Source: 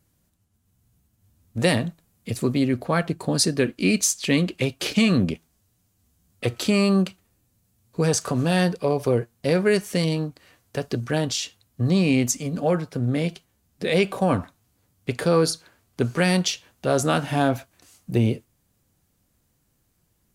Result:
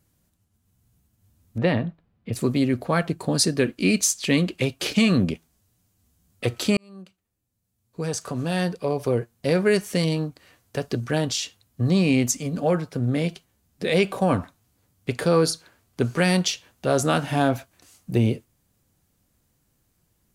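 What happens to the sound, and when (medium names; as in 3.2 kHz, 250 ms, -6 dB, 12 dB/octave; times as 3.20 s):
1.58–2.33 s: distance through air 370 m
6.77–9.65 s: fade in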